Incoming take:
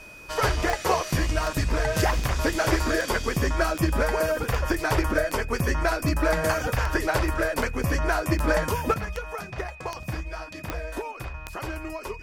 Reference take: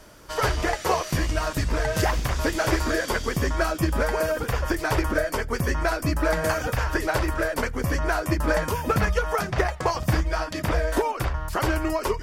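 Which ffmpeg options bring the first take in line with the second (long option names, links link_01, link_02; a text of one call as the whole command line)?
ffmpeg -i in.wav -af "adeclick=threshold=4,bandreject=frequency=2500:width=30,asetnsamples=nb_out_samples=441:pad=0,asendcmd='8.94 volume volume 9.5dB',volume=0dB" out.wav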